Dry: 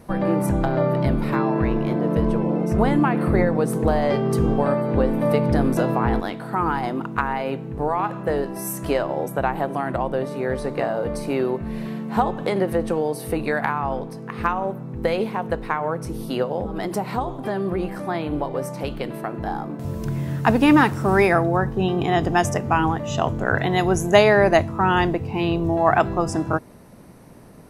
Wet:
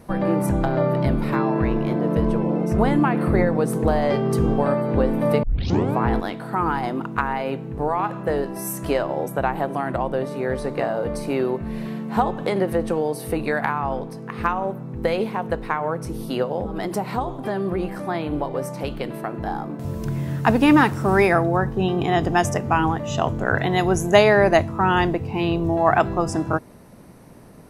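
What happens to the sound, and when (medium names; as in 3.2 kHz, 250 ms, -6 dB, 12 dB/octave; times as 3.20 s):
5.43 s: tape start 0.55 s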